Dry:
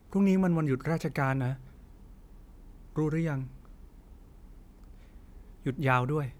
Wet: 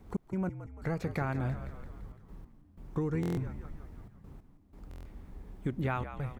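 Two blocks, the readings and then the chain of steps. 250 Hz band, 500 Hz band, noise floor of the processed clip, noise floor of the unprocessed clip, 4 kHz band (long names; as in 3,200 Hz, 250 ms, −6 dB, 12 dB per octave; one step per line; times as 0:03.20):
−6.5 dB, −6.0 dB, −60 dBFS, −54 dBFS, can't be measured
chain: high-shelf EQ 2,900 Hz −7.5 dB
downward compressor 6 to 1, threshold −33 dBFS, peak gain reduction 12 dB
gate pattern "x.x..xxxxxxx" 92 BPM −60 dB
echo with shifted repeats 170 ms, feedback 61%, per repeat −60 Hz, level −11 dB
buffer that repeats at 0:03.21/0:04.89, samples 1,024, times 6
level +3.5 dB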